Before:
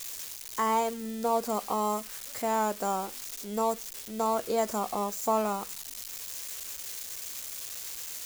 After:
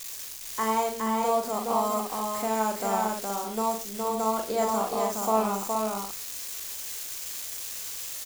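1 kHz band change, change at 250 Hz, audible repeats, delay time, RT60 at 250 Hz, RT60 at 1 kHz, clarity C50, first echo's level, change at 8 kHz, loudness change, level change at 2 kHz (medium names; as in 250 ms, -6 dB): +3.0 dB, +3.0 dB, 4, 41 ms, no reverb, no reverb, no reverb, -5.5 dB, +3.0 dB, +3.0 dB, +3.0 dB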